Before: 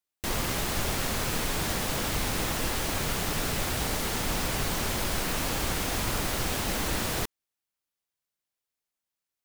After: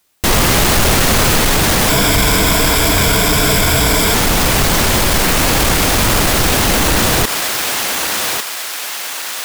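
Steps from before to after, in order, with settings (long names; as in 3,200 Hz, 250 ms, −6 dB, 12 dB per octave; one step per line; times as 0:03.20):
0:01.89–0:04.14: EQ curve with evenly spaced ripples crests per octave 1.7, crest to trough 11 dB
soft clipping −26.5 dBFS, distortion −13 dB
feedback echo with a high-pass in the loop 1,148 ms, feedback 55%, high-pass 830 Hz, level −11.5 dB
boost into a limiter +33 dB
level −5.5 dB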